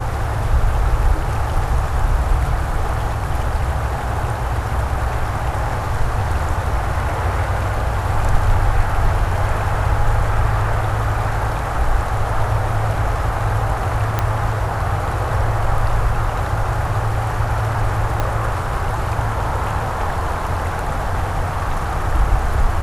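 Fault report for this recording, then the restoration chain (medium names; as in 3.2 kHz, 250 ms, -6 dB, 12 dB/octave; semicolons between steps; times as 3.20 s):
14.19 s: pop -5 dBFS
18.20 s: pop -7 dBFS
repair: de-click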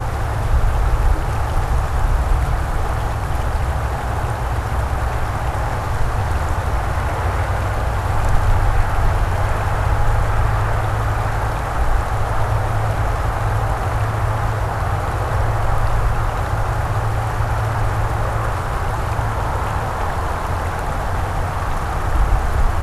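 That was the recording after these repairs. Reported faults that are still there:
18.20 s: pop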